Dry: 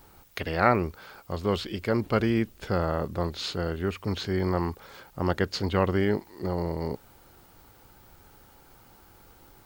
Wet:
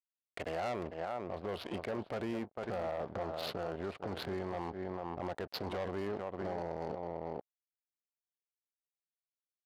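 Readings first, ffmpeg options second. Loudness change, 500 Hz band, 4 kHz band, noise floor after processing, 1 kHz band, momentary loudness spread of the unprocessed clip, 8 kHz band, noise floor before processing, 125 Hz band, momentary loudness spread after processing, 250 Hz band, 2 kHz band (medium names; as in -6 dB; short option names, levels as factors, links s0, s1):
-11.5 dB, -9.0 dB, -10.5 dB, under -85 dBFS, -9.5 dB, 11 LU, under -10 dB, -56 dBFS, -16.0 dB, 3 LU, -13.0 dB, -12.5 dB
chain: -filter_complex "[0:a]aresample=11025,aeval=exprs='sgn(val(0))*max(abs(val(0))-0.00794,0)':c=same,aresample=44100,equalizer=f=690:w=1.5:g=11.5,asplit=2[s0][s1];[s1]aecho=0:1:449:0.224[s2];[s0][s2]amix=inputs=2:normalize=0,adynamicsmooth=sensitivity=8:basefreq=1400,asoftclip=type=tanh:threshold=0.133,acompressor=threshold=0.0158:ratio=6,highpass=f=140:p=1,agate=range=0.1:threshold=0.00398:ratio=16:detection=peak,alimiter=level_in=2.99:limit=0.0631:level=0:latency=1:release=14,volume=0.335,volume=1.68"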